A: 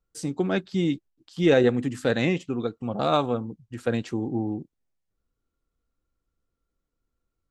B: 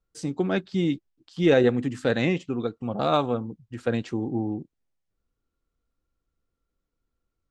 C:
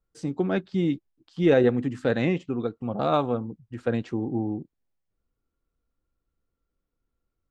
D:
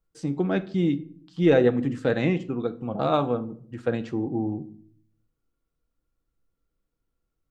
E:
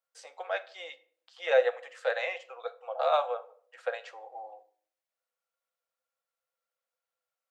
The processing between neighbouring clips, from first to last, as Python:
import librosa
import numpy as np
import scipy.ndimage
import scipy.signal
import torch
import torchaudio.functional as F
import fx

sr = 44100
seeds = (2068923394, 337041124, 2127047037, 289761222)

y1 = scipy.signal.sosfilt(scipy.signal.bessel(2, 6700.0, 'lowpass', norm='mag', fs=sr, output='sos'), x)
y2 = fx.high_shelf(y1, sr, hz=3100.0, db=-9.0)
y3 = fx.room_shoebox(y2, sr, seeds[0], volume_m3=730.0, walls='furnished', distance_m=0.6)
y4 = scipy.signal.sosfilt(scipy.signal.cheby1(6, 3, 500.0, 'highpass', fs=sr, output='sos'), y3)